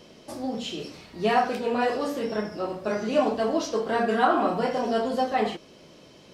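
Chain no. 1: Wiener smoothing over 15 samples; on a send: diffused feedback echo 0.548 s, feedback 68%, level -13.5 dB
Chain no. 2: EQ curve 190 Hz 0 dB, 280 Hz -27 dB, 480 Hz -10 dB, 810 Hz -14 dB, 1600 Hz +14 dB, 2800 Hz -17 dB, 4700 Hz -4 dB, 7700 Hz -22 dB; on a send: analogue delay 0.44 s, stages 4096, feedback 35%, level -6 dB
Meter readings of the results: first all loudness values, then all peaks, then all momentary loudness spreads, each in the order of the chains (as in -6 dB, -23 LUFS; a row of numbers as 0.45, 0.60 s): -26.5, -26.5 LUFS; -7.5, -8.5 dBFS; 14, 21 LU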